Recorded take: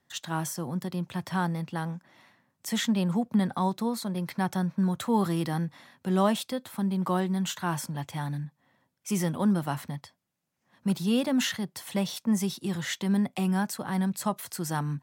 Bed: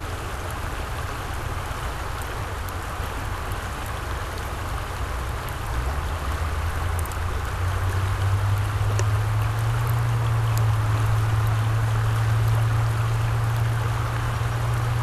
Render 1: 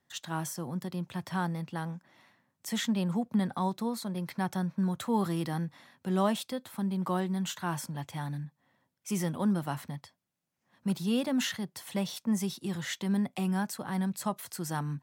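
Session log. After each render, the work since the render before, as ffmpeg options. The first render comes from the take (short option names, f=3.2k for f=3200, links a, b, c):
-af "volume=-3.5dB"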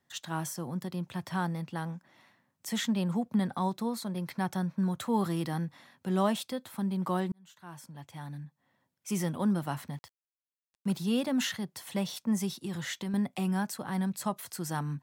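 -filter_complex "[0:a]asettb=1/sr,asplit=3[a][b][c];[a]atrim=end=9.924[d];[b]atrim=start=9.92:end=10.97,asetpts=PTS-STARTPTS,afade=t=in:d=0.004:c=qsin,afade=t=out:st=1.046:d=0.004:c=qsin,aeval=exprs='val(0)*gte(abs(val(0)),0.002)':c=same[e];[c]atrim=start=10.966[f];[d][e]acrossfade=d=0.004:c1=hsin:c2=qsin[g];[g][f]acrossfade=d=0.004:c1=qsin:c2=hsin,asettb=1/sr,asplit=3[h][i][j];[h]atrim=end=12.604[k];[i]atrim=start=12.6:end=13.14,asetpts=PTS-STARTPTS,afade=t=in:d=0.004:c=qsin,afade=t=out:st=0.536:d=0.004:c=qsin,acompressor=threshold=-31dB:ratio=6:attack=3.2:release=140:knee=1:detection=peak[l];[j]atrim=start=13.136[m];[k][l]acrossfade=d=0.004:c1=hsin:c2=qsin[n];[n][m]acrossfade=d=0.004:c1=qsin:c2=hsin,asplit=2[o][p];[o]atrim=end=7.32,asetpts=PTS-STARTPTS,afade=t=out:st=7.316:d=0.004:c=hsin[q];[p]atrim=start=7.32,asetpts=PTS-STARTPTS,afade=t=in:d=1.81[r];[q][r]concat=n=2:v=0:a=1"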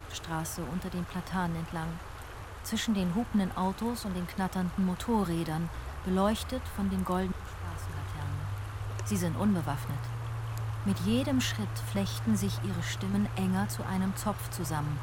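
-filter_complex "[1:a]volume=-14dB[a];[0:a][a]amix=inputs=2:normalize=0"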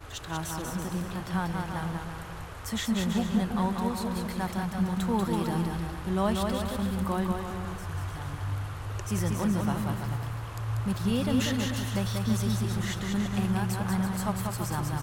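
-af "aecho=1:1:190|332.5|439.4|519.5|579.6:0.631|0.398|0.251|0.158|0.1"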